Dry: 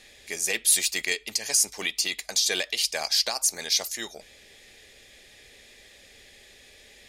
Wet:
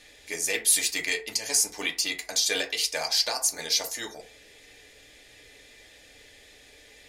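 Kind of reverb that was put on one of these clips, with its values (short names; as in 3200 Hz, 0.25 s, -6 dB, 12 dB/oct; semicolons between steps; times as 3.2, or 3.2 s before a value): FDN reverb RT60 0.39 s, low-frequency decay 0.75×, high-frequency decay 0.4×, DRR 1 dB; gain -2 dB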